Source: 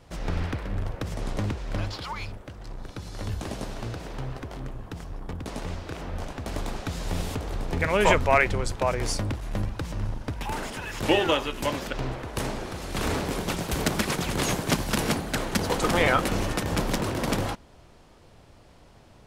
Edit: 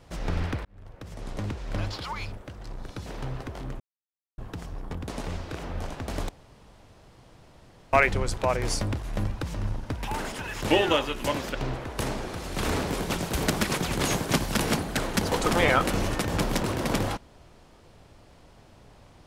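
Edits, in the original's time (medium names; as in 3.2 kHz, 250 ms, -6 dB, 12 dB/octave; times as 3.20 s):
0.65–1.88 s: fade in
3.06–4.02 s: delete
4.76 s: insert silence 0.58 s
6.67–8.31 s: room tone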